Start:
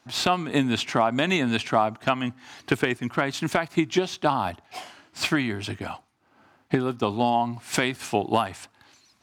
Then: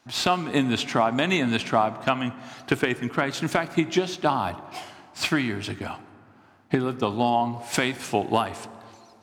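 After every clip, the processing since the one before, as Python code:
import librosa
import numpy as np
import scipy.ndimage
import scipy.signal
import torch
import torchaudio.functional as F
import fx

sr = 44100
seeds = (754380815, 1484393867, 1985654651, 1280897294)

y = fx.rev_plate(x, sr, seeds[0], rt60_s=2.4, hf_ratio=0.45, predelay_ms=0, drr_db=14.0)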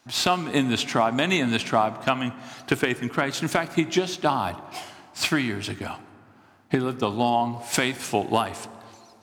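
y = fx.high_shelf(x, sr, hz=5200.0, db=5.5)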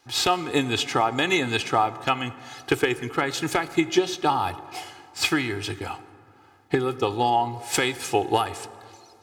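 y = x + 0.69 * np.pad(x, (int(2.4 * sr / 1000.0), 0))[:len(x)]
y = y * librosa.db_to_amplitude(-1.0)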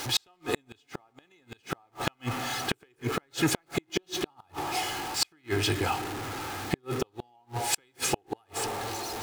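y = x + 0.5 * 10.0 ** (-32.5 / 20.0) * np.sign(x)
y = fx.gate_flip(y, sr, shuts_db=-14.0, range_db=-42)
y = y * librosa.db_to_amplitude(1.5)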